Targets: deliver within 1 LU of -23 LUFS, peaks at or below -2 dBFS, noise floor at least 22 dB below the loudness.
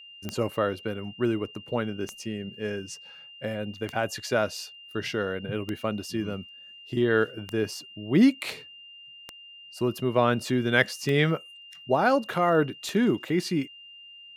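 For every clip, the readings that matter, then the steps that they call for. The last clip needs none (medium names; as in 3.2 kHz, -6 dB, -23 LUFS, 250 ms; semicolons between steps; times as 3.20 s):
clicks found 8; steady tone 2.8 kHz; tone level -45 dBFS; loudness -27.5 LUFS; peak level -4.5 dBFS; loudness target -23.0 LUFS
-> de-click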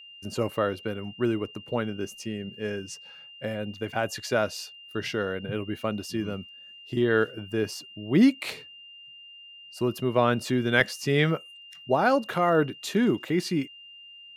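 clicks found 0; steady tone 2.8 kHz; tone level -45 dBFS
-> band-stop 2.8 kHz, Q 30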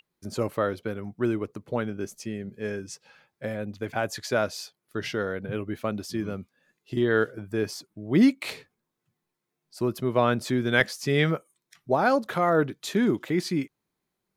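steady tone not found; loudness -27.5 LUFS; peak level -4.5 dBFS; loudness target -23.0 LUFS
-> trim +4.5 dB; peak limiter -2 dBFS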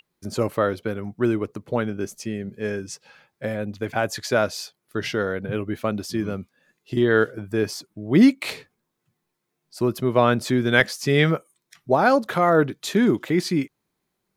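loudness -23.0 LUFS; peak level -2.0 dBFS; noise floor -78 dBFS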